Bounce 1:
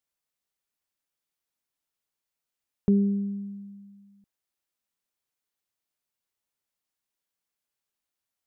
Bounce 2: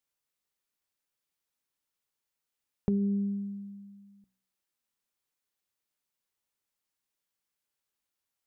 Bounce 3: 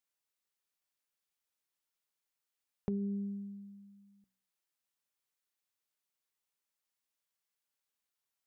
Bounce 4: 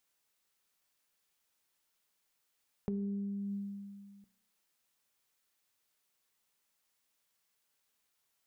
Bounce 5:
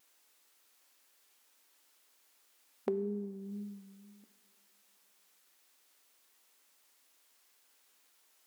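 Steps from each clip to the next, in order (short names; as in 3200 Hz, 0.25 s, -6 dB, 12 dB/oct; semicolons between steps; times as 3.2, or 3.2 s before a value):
notch 680 Hz, Q 12; de-hum 63.17 Hz, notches 5; compressor, threshold -25 dBFS, peak gain reduction 7 dB
low shelf 370 Hz -6.5 dB; gain -2.5 dB
in parallel at +2.5 dB: negative-ratio compressor -46 dBFS, ratio -1; on the sum: resonator 220 Hz, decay 1.1 s, mix 60%; gain +5 dB
vibrato 2 Hz 46 cents; brick-wall FIR high-pass 220 Hz; on a send at -17 dB: reverb RT60 2.7 s, pre-delay 5 ms; on the sum: gain +10.5 dB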